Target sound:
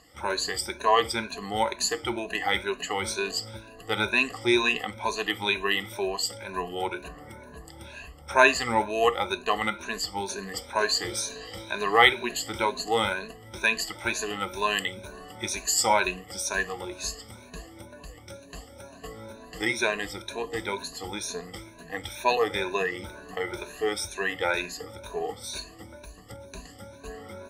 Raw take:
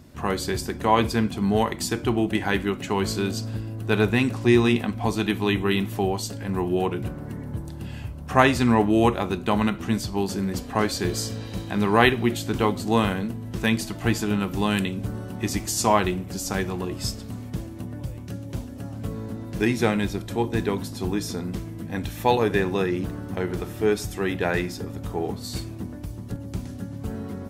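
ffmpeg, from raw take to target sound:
-af "afftfilt=real='re*pow(10,20/40*sin(2*PI*(1.5*log(max(b,1)*sr/1024/100)/log(2)-(2.1)*(pts-256)/sr)))':imag='im*pow(10,20/40*sin(2*PI*(1.5*log(max(b,1)*sr/1024/100)/log(2)-(2.1)*(pts-256)/sr)))':win_size=1024:overlap=0.75,equalizer=f=125:t=o:w=1:g=-11,equalizer=f=250:t=o:w=1:g=-6,equalizer=f=500:t=o:w=1:g=6,equalizer=f=1k:t=o:w=1:g=5,equalizer=f=2k:t=o:w=1:g=8,equalizer=f=4k:t=o:w=1:g=7,equalizer=f=8k:t=o:w=1:g=8,volume=-11.5dB"

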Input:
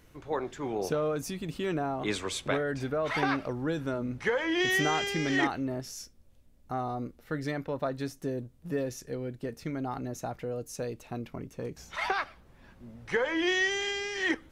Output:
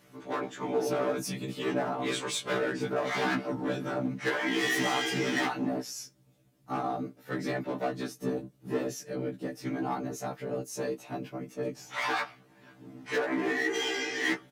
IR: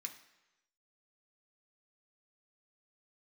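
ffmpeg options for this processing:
-filter_complex "[0:a]asettb=1/sr,asplit=3[a][b][c];[a]atrim=end=13.184[d];[b]atrim=start=13.18:end=13.75,asetpts=PTS-STARTPTS,afade=t=in:d=0.004:c=qsin,afade=t=out:st=0.566:d=0.004:c=qsin,asuperstop=centerf=4200:order=4:qfactor=0.57[e];[c]atrim=start=13.746[f];[d][e]acrossfade=d=0.004:c1=hsin:c2=qsin[g];[g][f]acrossfade=d=0.004:c1=qsin:c2=hsin,afftfilt=real='hypot(re,im)*cos(2*PI*random(0))':imag='hypot(re,im)*sin(2*PI*random(1))':win_size=512:overlap=0.75,volume=33.5dB,asoftclip=hard,volume=-33.5dB,highpass=160,aecho=1:1:6.8:0.67,afftfilt=real='re*1.73*eq(mod(b,3),0)':imag='im*1.73*eq(mod(b,3),0)':win_size=2048:overlap=0.75,volume=9dB"

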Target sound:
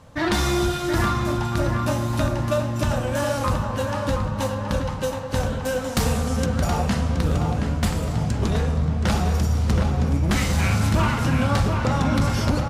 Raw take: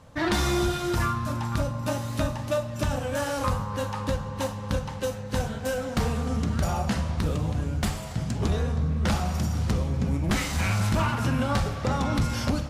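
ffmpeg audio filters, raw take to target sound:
-filter_complex "[0:a]asettb=1/sr,asplit=3[a][b][c];[a]atrim=end=5.844[d];[b]atrim=start=5.84:end=6.46,asetpts=PTS-STARTPTS,afade=t=in:d=0.004:c=qsin,afade=t=out:st=0.616:d=0.004:c=qsin,highshelf=f=4.8k:g=11.5[e];[c]atrim=start=6.456[f];[d][e]acrossfade=d=0.004:c1=hsin:c2=qsin[g];[g][f]acrossfade=d=0.004:c1=qsin:c2=hsin,asplit=2[h][i];[i]adelay=723,lowpass=f=2.6k:p=1,volume=-4.5dB,asplit=2[j][k];[k]adelay=723,lowpass=f=2.6k:p=1,volume=0.5,asplit=2[l][m];[m]adelay=723,lowpass=f=2.6k:p=1,volume=0.5,asplit=2[n][o];[o]adelay=723,lowpass=f=2.6k:p=1,volume=0.5,asplit=2[p][q];[q]adelay=723,lowpass=f=2.6k:p=1,volume=0.5,asplit=2[r][s];[s]adelay=723,lowpass=f=2.6k:p=1,volume=0.5[t];[h][j][l][n][p][r][t]amix=inputs=7:normalize=0,volume=3dB"

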